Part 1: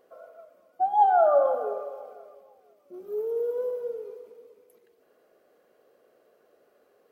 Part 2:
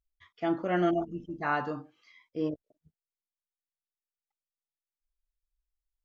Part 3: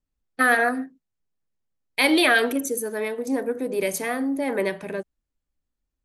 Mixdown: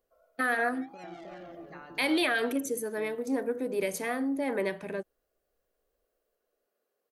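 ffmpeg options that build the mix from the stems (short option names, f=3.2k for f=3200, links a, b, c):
-filter_complex "[0:a]asoftclip=type=tanh:threshold=-25dB,volume=-19.5dB,asplit=2[a][b];[b]volume=-11dB[c];[1:a]acompressor=threshold=-34dB:ratio=6,adelay=300,volume=-7.5dB,asplit=2[d][e];[e]volume=-4dB[f];[2:a]volume=-5dB,asplit=2[g][h];[h]apad=whole_len=279964[i];[d][i]sidechaincompress=threshold=-35dB:ratio=8:attack=16:release=130[j];[a][j]amix=inputs=2:normalize=0,crystalizer=i=3.5:c=0,acompressor=threshold=-53dB:ratio=1.5,volume=0dB[k];[c][f]amix=inputs=2:normalize=0,aecho=0:1:312:1[l];[g][k][l]amix=inputs=3:normalize=0,highshelf=f=6.7k:g=-4.5,alimiter=limit=-18.5dB:level=0:latency=1:release=106"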